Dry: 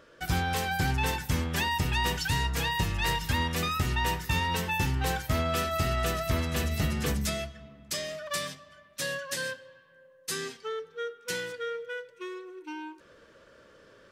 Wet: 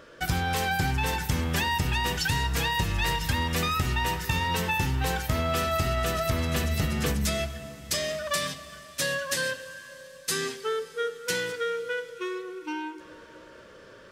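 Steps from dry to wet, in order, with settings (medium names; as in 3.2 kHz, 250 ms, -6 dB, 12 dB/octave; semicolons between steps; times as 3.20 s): compression, threshold -29 dBFS, peak gain reduction 6.5 dB; reverberation RT60 5.0 s, pre-delay 33 ms, DRR 14.5 dB; trim +6 dB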